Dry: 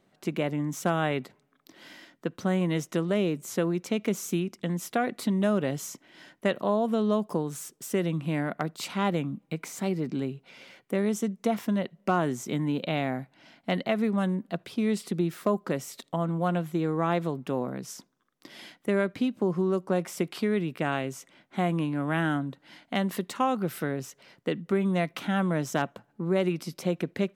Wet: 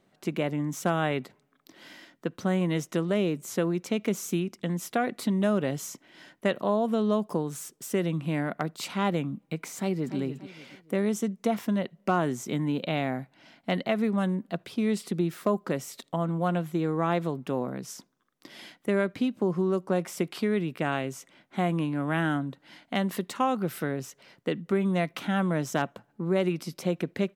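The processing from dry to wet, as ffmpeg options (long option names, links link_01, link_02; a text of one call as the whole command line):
ffmpeg -i in.wav -filter_complex "[0:a]asplit=2[link_01][link_02];[link_02]afade=type=in:start_time=9.77:duration=0.01,afade=type=out:start_time=10.17:duration=0.01,aecho=0:1:290|580|870|1160:0.281838|0.0986434|0.0345252|0.0120838[link_03];[link_01][link_03]amix=inputs=2:normalize=0" out.wav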